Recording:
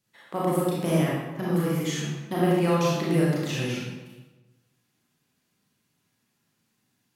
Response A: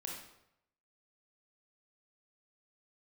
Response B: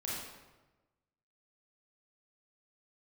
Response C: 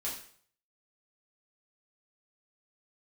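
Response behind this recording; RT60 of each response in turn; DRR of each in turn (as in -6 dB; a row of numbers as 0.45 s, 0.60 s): B; 0.80 s, 1.2 s, 0.55 s; -1.5 dB, -6.5 dB, -7.0 dB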